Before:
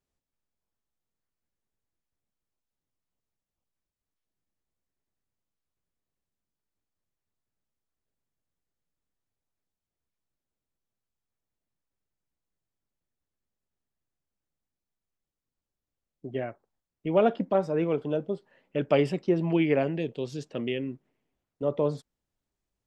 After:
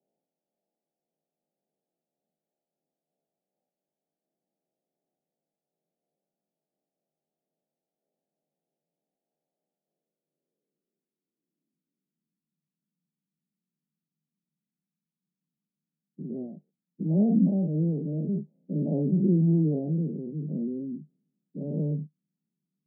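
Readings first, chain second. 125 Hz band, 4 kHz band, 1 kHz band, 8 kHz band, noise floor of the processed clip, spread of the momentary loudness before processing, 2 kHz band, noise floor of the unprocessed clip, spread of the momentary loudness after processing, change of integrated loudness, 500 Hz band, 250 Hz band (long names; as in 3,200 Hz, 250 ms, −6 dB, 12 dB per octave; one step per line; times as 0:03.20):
+7.5 dB, below −35 dB, below −15 dB, can't be measured, below −85 dBFS, 13 LU, below −40 dB, below −85 dBFS, 16 LU, +1.0 dB, −9.0 dB, +4.5 dB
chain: every bin's largest magnitude spread in time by 120 ms
Chebyshev band-pass filter 150–850 Hz, order 5
low-pass filter sweep 660 Hz → 190 Hz, 0:09.70–0:12.71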